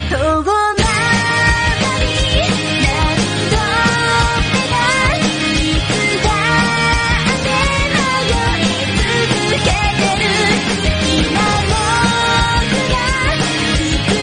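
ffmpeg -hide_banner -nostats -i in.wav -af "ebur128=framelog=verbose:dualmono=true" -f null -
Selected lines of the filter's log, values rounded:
Integrated loudness:
  I:         -10.8 LUFS
  Threshold: -20.8 LUFS
Loudness range:
  LRA:         0.5 LU
  Threshold: -30.8 LUFS
  LRA low:   -11.0 LUFS
  LRA high:  -10.5 LUFS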